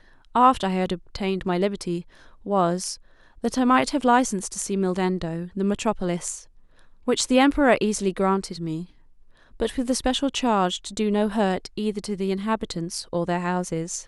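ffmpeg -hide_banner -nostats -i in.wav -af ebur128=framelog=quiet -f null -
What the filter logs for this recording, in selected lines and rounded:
Integrated loudness:
  I:         -23.9 LUFS
  Threshold: -34.4 LUFS
Loudness range:
  LRA:         2.4 LU
  Threshold: -44.4 LUFS
  LRA low:   -25.7 LUFS
  LRA high:  -23.4 LUFS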